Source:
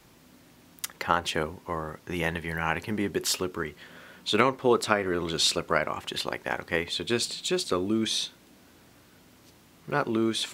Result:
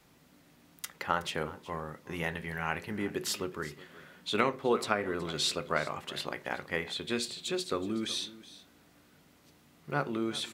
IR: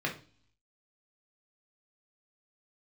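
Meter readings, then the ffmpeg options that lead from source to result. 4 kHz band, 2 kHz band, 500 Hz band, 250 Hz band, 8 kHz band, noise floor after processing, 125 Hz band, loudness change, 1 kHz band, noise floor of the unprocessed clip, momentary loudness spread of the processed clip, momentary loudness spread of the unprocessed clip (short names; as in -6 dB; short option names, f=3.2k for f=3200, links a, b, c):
-6.0 dB, -5.0 dB, -5.5 dB, -6.0 dB, -7.0 dB, -63 dBFS, -5.0 dB, -6.0 dB, -5.5 dB, -57 dBFS, 12 LU, 11 LU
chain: -filter_complex "[0:a]aecho=1:1:371:0.126,asplit=2[a][b];[1:a]atrim=start_sample=2205[c];[b][c]afir=irnorm=-1:irlink=0,volume=-14dB[d];[a][d]amix=inputs=2:normalize=0,volume=-7.5dB"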